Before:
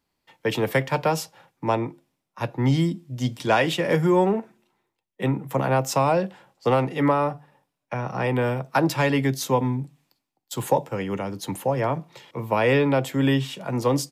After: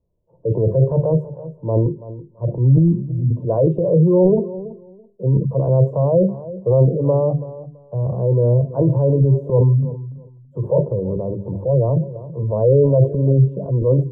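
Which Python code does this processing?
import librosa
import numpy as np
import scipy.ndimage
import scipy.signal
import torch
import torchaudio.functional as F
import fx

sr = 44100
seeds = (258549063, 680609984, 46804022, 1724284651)

y = fx.hum_notches(x, sr, base_hz=50, count=8)
y = fx.transient(y, sr, attack_db=-5, sustain_db=9)
y = y + 0.67 * np.pad(y, (int(1.9 * sr / 1000.0), 0))[:len(y)]
y = fx.spec_gate(y, sr, threshold_db=-20, keep='strong')
y = scipy.signal.sosfilt(scipy.signal.cheby2(4, 50, 1800.0, 'lowpass', fs=sr, output='sos'), y)
y = fx.low_shelf(y, sr, hz=400.0, db=10.5)
y = fx.echo_feedback(y, sr, ms=331, feedback_pct=19, wet_db=-16)
y = fx.wow_flutter(y, sr, seeds[0], rate_hz=2.1, depth_cents=17.0)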